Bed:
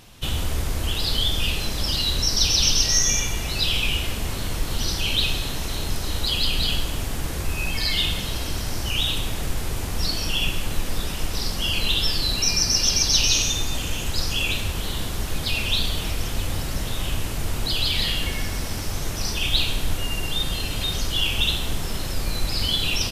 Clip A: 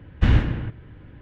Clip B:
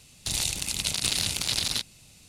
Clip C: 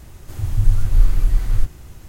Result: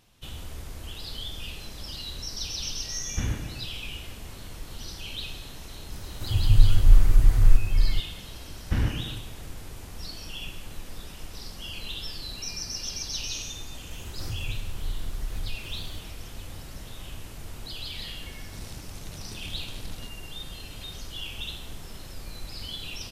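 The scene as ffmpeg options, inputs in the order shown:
-filter_complex "[1:a]asplit=2[a][b];[3:a]asplit=2[c][d];[0:a]volume=-14dB[e];[c]asplit=2[f][g];[g]adelay=874.6,volume=-7dB,highshelf=f=4k:g=-19.7[h];[f][h]amix=inputs=2:normalize=0[i];[d]acompressor=threshold=-27dB:ratio=6:attack=3.2:release=140:knee=1:detection=peak[j];[2:a]tiltshelf=f=970:g=9[k];[a]atrim=end=1.21,asetpts=PTS-STARTPTS,volume=-12dB,afade=t=in:d=0.004:c=hsin,afade=t=out:st=1.206:d=0.004:c=hsin,adelay=2950[l];[i]atrim=end=2.08,asetpts=PTS-STARTPTS,volume=-1dB,afade=t=in:d=0.004:c=hsin,afade=t=out:st=2.076:d=0.004:c=hsin,adelay=5920[m];[b]atrim=end=1.21,asetpts=PTS-STARTPTS,volume=-8dB,afade=t=in:d=0.004:c=hsin,afade=t=out:st=1.206:d=0.004:c=hsin,adelay=8490[n];[j]atrim=end=2.08,asetpts=PTS-STARTPTS,volume=-2dB,afade=t=in:d=0.004:c=hsin,afade=t=out:st=2.076:d=0.004:c=hsin,adelay=13910[o];[k]atrim=end=2.28,asetpts=PTS-STARTPTS,volume=-14.5dB,afade=t=in:d=0.004:c=hsin,afade=t=out:st=2.276:d=0.004:c=hsin,adelay=18270[p];[e][l][m][n][o][p]amix=inputs=6:normalize=0"

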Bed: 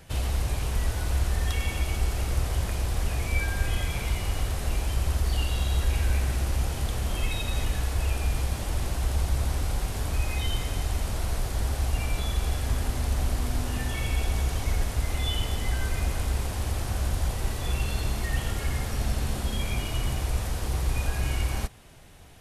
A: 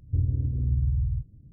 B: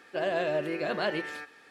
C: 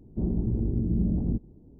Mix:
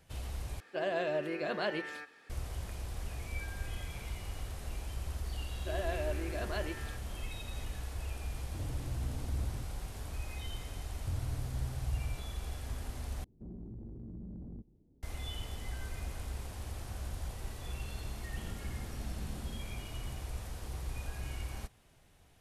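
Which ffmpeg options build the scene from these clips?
-filter_complex "[2:a]asplit=2[a][b];[1:a]asplit=2[c][d];[3:a]asplit=2[e][f];[0:a]volume=-13dB[g];[b]aecho=1:1:3:0.31[h];[c]asoftclip=type=tanh:threshold=-30dB[i];[e]acompressor=threshold=-29dB:ratio=3:attack=1.1:release=22:knee=1:detection=rms[j];[f]acompressor=threshold=-38dB:ratio=6:attack=3.2:release=140:knee=1:detection=peak[k];[g]asplit=3[l][m][n];[l]atrim=end=0.604[o];[a]atrim=end=1.7,asetpts=PTS-STARTPTS,volume=-4.5dB[p];[m]atrim=start=2.296:end=13.244[q];[j]atrim=end=1.79,asetpts=PTS-STARTPTS,volume=-14.5dB[r];[n]atrim=start=15.026[s];[h]atrim=end=1.7,asetpts=PTS-STARTPTS,volume=-9.5dB,afade=t=in:d=0.004:c=hsin,afade=t=out:st=1.696:d=0.004:c=hsin,adelay=5520[t];[i]atrim=end=1.52,asetpts=PTS-STARTPTS,volume=-6.5dB,afade=t=in:d=0.004:c=hsin,afade=t=out:st=1.516:d=0.004:c=hsin,adelay=8410[u];[d]atrim=end=1.52,asetpts=PTS-STARTPTS,volume=-12dB,afade=t=in:d=0.004:c=hsin,afade=t=out:st=1.516:d=0.004:c=hsin,adelay=10940[v];[k]atrim=end=1.79,asetpts=PTS-STARTPTS,volume=-7.5dB,afade=t=in:d=0.004:c=hsin,afade=t=out:st=1.786:d=0.004:c=hsin,adelay=18210[w];[o][p]acrossfade=d=0.004:c1=hsin:c2=hsin[x];[x][q]acrossfade=d=0.004:c1=hsin:c2=hsin[y];[y][r]acrossfade=d=0.004:c1=hsin:c2=hsin[z];[z][s]acrossfade=d=0.004:c1=hsin:c2=hsin[aa];[aa][t][u][v][w]amix=inputs=5:normalize=0"

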